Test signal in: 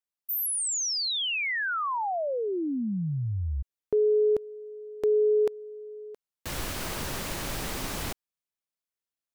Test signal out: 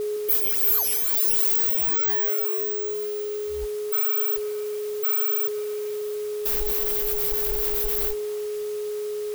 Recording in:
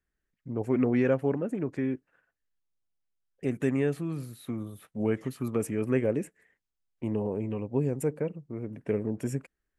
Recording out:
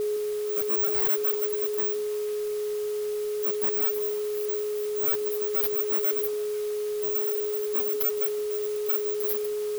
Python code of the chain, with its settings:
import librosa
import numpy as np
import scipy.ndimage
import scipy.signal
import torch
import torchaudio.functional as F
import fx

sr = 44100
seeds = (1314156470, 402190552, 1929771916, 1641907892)

p1 = fx.bit_reversed(x, sr, seeds[0], block=16)
p2 = scipy.signal.sosfilt(scipy.signal.cheby2(6, 70, [110.0, 6300.0], 'bandstop', fs=sr, output='sos'), p1)
p3 = fx.high_shelf(p2, sr, hz=6200.0, db=11.0)
p4 = fx.spec_gate(p3, sr, threshold_db=-15, keep='strong')
p5 = fx.dereverb_blind(p4, sr, rt60_s=1.6)
p6 = p5 + 10.0 ** (-36.0 / 20.0) * np.sin(2.0 * np.pi * 420.0 * np.arange(len(p5)) / sr)
p7 = fx.fold_sine(p6, sr, drive_db=16, ceiling_db=-13.5)
p8 = p6 + (p7 * 10.0 ** (-10.0 / 20.0))
p9 = fx.mod_noise(p8, sr, seeds[1], snr_db=18)
y = p9 + fx.echo_stepped(p9, sr, ms=163, hz=330.0, octaves=1.4, feedback_pct=70, wet_db=-8.5, dry=0)